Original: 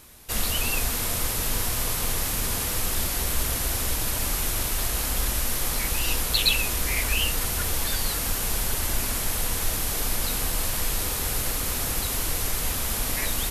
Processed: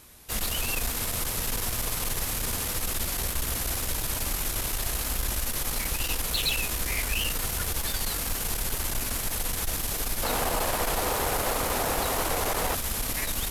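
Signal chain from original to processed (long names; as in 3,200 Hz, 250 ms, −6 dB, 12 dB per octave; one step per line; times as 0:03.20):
0:10.23–0:12.75: parametric band 710 Hz +14.5 dB 2.4 octaves
tube saturation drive 21 dB, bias 0.5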